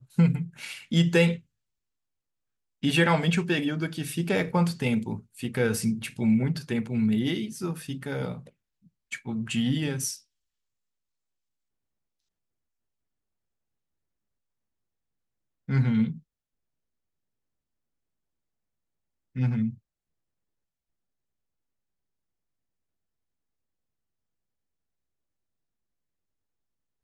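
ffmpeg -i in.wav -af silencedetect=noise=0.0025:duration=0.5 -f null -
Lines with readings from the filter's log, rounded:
silence_start: 1.41
silence_end: 2.83 | silence_duration: 1.42
silence_start: 10.21
silence_end: 15.68 | silence_duration: 5.47
silence_start: 16.20
silence_end: 19.35 | silence_duration: 3.15
silence_start: 19.78
silence_end: 27.04 | silence_duration: 7.26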